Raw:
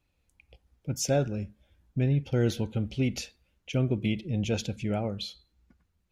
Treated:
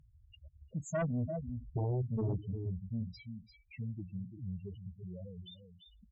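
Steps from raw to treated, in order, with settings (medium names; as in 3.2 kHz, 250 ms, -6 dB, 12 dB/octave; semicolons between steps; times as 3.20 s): Doppler pass-by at 1.47 s, 49 m/s, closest 3.2 m; in parallel at 0 dB: upward compressor, threshold -48 dBFS; on the sum: delay 344 ms -9 dB; on a send at -22 dB: reverberation RT60 0.90 s, pre-delay 57 ms; on the sum: low-pass that closes with the level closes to 2.3 kHz, closed at -31.5 dBFS; loudest bins only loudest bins 4; Chebyshev shaper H 5 -7 dB, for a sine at -28 dBFS; trim +1 dB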